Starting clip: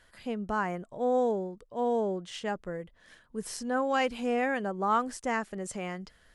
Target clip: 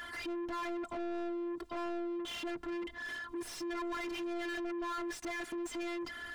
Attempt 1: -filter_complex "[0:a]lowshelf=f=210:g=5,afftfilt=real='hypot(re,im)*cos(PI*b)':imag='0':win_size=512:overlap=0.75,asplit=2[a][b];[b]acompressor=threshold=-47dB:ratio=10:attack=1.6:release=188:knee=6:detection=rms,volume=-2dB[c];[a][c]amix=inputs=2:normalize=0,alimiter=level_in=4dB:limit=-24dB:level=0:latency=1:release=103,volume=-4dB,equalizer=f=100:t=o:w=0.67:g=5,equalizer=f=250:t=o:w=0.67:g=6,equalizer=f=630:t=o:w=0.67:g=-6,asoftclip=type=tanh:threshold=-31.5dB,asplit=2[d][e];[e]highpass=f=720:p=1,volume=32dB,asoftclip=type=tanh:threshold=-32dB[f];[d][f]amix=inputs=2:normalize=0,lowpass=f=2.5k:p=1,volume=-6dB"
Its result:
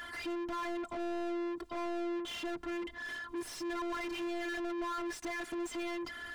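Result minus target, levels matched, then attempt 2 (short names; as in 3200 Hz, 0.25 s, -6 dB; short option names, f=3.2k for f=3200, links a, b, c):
soft clip: distortion -10 dB
-filter_complex "[0:a]lowshelf=f=210:g=5,afftfilt=real='hypot(re,im)*cos(PI*b)':imag='0':win_size=512:overlap=0.75,asplit=2[a][b];[b]acompressor=threshold=-47dB:ratio=10:attack=1.6:release=188:knee=6:detection=rms,volume=-2dB[c];[a][c]amix=inputs=2:normalize=0,alimiter=level_in=4dB:limit=-24dB:level=0:latency=1:release=103,volume=-4dB,equalizer=f=100:t=o:w=0.67:g=5,equalizer=f=250:t=o:w=0.67:g=6,equalizer=f=630:t=o:w=0.67:g=-6,asoftclip=type=tanh:threshold=-40dB,asplit=2[d][e];[e]highpass=f=720:p=1,volume=32dB,asoftclip=type=tanh:threshold=-32dB[f];[d][f]amix=inputs=2:normalize=0,lowpass=f=2.5k:p=1,volume=-6dB"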